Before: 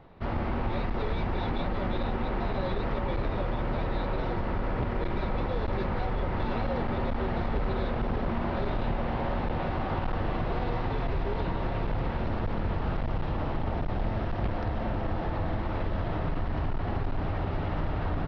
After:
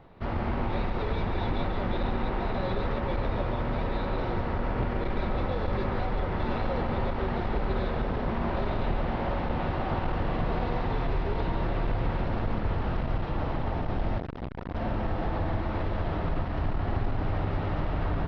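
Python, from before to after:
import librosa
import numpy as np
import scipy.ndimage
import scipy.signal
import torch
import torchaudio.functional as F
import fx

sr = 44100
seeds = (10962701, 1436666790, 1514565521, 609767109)

y = fx.echo_feedback(x, sr, ms=139, feedback_pct=36, wet_db=-7)
y = fx.transformer_sat(y, sr, knee_hz=410.0, at=(14.18, 14.75))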